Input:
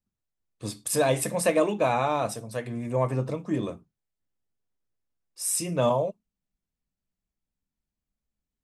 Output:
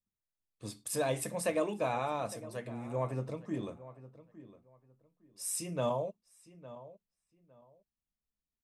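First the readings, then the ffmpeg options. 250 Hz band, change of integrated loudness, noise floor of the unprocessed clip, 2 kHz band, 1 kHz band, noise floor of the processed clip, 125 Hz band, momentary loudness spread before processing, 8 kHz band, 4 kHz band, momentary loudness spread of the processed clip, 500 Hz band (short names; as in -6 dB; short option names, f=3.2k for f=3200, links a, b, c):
-9.0 dB, -9.0 dB, under -85 dBFS, -9.0 dB, -9.0 dB, under -85 dBFS, -9.0 dB, 11 LU, -9.0 dB, -9.0 dB, 21 LU, -9.0 dB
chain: -filter_complex "[0:a]asplit=2[a][b];[b]adelay=859,lowpass=f=2.3k:p=1,volume=-16dB,asplit=2[c][d];[d]adelay=859,lowpass=f=2.3k:p=1,volume=0.23[e];[a][c][e]amix=inputs=3:normalize=0,volume=-9dB"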